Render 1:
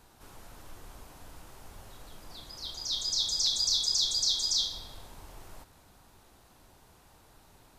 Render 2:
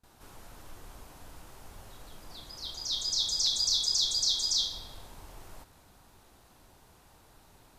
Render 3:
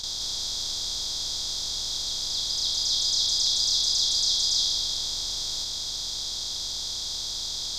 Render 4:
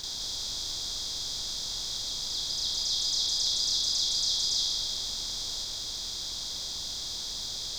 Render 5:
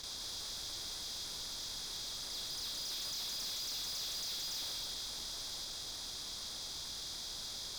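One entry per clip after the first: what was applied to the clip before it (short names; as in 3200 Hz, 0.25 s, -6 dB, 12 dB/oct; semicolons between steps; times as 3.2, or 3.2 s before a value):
gate with hold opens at -50 dBFS
per-bin compression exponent 0.2; gain -2 dB
added noise pink -48 dBFS; gain -4 dB
tube stage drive 34 dB, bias 0.6; gain -4 dB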